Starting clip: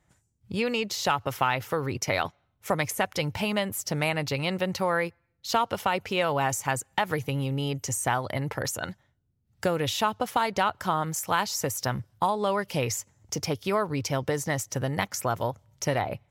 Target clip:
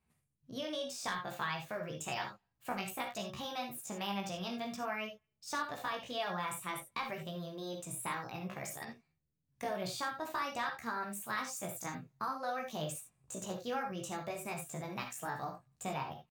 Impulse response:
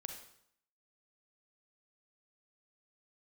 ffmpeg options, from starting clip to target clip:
-filter_complex "[0:a]flanger=delay=16.5:depth=4:speed=0.55,asetrate=55563,aresample=44100,atempo=0.793701[a];[1:a]atrim=start_sample=2205,atrim=end_sample=3969[b];[a][b]afir=irnorm=-1:irlink=0,volume=-5.5dB"

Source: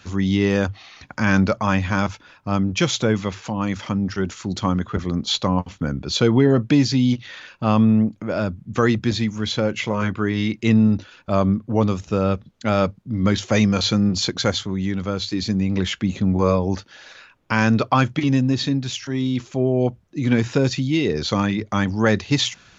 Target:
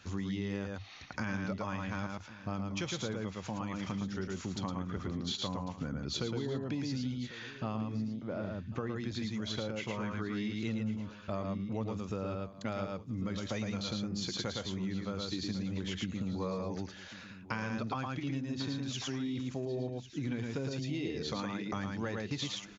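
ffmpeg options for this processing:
-filter_complex "[0:a]asettb=1/sr,asplit=3[a][b][c];[a]atrim=end=21.284[d];[b]atrim=start=21.28:end=21.73,asetpts=PTS-STARTPTS,afade=t=in:d=0.004:c=qsin,afade=t=out:st=0.446:d=0.004:c=qsin,highpass=160[e];[c]atrim=start=21.726[f];[d][e]acrossfade=d=0.004:c1=hsin:c2=qsin[g];[g][f]acrossfade=d=0.004:c1=qsin:c2=hsin,asplit=2[h][i];[i]aecho=0:1:111:0.708[j];[h][j]amix=inputs=2:normalize=0,acompressor=threshold=-25dB:ratio=6,asettb=1/sr,asplit=3[k][l][m];[k]atrim=end=8.144[n];[l]atrim=start=8.14:end=8.96,asetpts=PTS-STARTPTS,afade=t=in:d=0.004:c=qsin,afade=t=out:st=0.816:d=0.004:c=qsin,lowpass=f=1.3k:p=1[o];[m]atrim=start=8.956[p];[n][o]acrossfade=d=0.004:c1=hsin:c2=qsin[q];[q][p]acrossfade=d=0.004:c1=qsin:c2=hsin,asplit=2[r][s];[s]aecho=0:1:1098:0.168[t];[r][t]amix=inputs=2:normalize=0,volume=-8.5dB"

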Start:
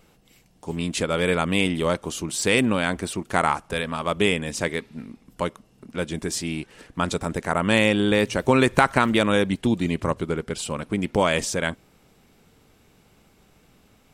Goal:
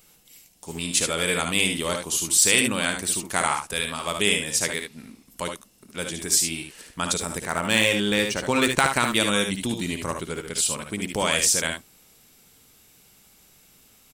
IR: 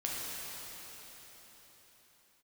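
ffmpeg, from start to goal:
-filter_complex "[0:a]asettb=1/sr,asplit=3[a][b][c];[a]atrim=end=7.424[d];[b]atrim=start=7.42:end=8.81,asetpts=PTS-STARTPTS,afade=t=in:d=0.004:c=qsin,afade=t=out:st=1.386:d=0.004:c=qsin,adynamicsmooth=sensitivity=2:basefreq=6.2k[e];[c]atrim=start=8.806[f];[d][e]acrossfade=d=0.004:c1=hsin:c2=qsin[g];[g][f]acrossfade=d=0.004:c1=qsin:c2=hsin,aecho=1:1:58|73:0.335|0.473,crystalizer=i=6:c=0,volume=-7dB"

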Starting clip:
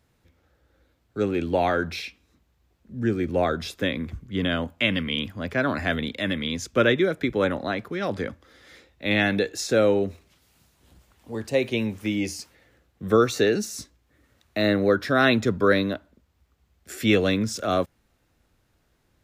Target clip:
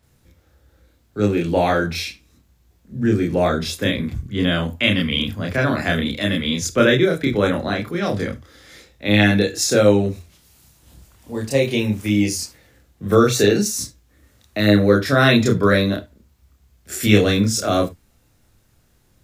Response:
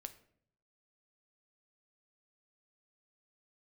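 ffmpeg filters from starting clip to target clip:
-filter_complex "[0:a]asplit=2[a][b];[b]bass=f=250:g=9,treble=f=4k:g=12[c];[1:a]atrim=start_sample=2205,atrim=end_sample=3528,adelay=29[d];[c][d]afir=irnorm=-1:irlink=0,volume=2dB[e];[a][e]amix=inputs=2:normalize=0,volume=2.5dB"

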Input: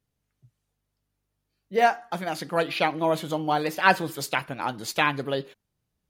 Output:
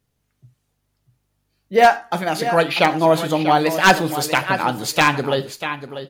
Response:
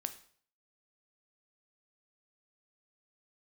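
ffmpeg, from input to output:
-filter_complex "[0:a]aecho=1:1:642|1284:0.282|0.0507,aeval=exprs='0.282*(abs(mod(val(0)/0.282+3,4)-2)-1)':c=same,asplit=2[a][b];[1:a]atrim=start_sample=2205,afade=t=out:st=0.15:d=0.01,atrim=end_sample=7056[c];[b][c]afir=irnorm=-1:irlink=0,volume=5dB[d];[a][d]amix=inputs=2:normalize=0"

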